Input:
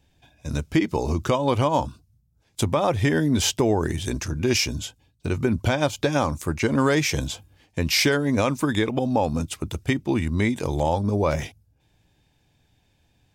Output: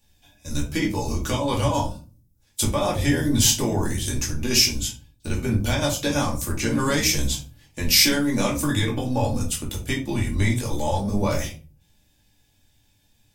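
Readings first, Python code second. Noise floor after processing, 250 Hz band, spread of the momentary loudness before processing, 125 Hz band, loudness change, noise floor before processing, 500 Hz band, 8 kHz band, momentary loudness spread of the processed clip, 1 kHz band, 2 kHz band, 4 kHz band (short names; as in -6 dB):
-63 dBFS, -1.0 dB, 10 LU, +0.5 dB, +0.5 dB, -66 dBFS, -3.5 dB, +7.0 dB, 12 LU, -2.5 dB, -0.5 dB, +5.0 dB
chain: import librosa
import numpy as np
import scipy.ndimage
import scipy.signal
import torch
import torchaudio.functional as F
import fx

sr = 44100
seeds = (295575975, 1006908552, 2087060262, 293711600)

y = fx.octave_divider(x, sr, octaves=1, level_db=-3.0)
y = scipy.signal.lfilter([1.0, -0.8], [1.0], y)
y = fx.room_shoebox(y, sr, seeds[0], volume_m3=190.0, walls='furnished', distance_m=2.4)
y = F.gain(torch.from_numpy(y), 5.0).numpy()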